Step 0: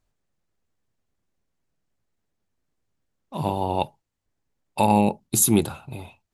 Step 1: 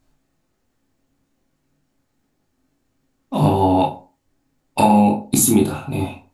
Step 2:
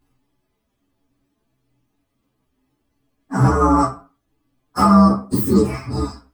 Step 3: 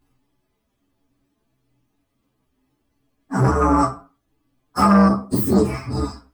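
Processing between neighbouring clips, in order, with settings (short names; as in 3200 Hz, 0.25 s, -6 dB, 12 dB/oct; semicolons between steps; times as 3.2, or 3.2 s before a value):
bell 270 Hz +14 dB 0.26 oct; compressor 6:1, threshold -23 dBFS, peak gain reduction 11.5 dB; reverb RT60 0.35 s, pre-delay 13 ms, DRR -1.5 dB; gain +8 dB
inharmonic rescaling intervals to 129%; gain +3 dB
core saturation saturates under 420 Hz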